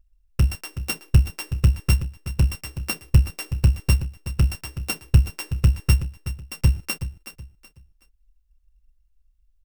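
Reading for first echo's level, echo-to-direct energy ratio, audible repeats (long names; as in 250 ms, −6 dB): −12.5 dB, −12.0 dB, 3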